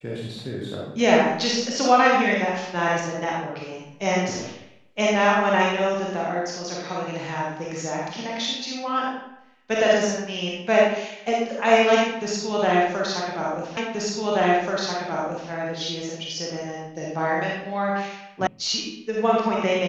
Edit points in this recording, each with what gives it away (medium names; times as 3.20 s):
13.77 s: repeat of the last 1.73 s
18.47 s: sound stops dead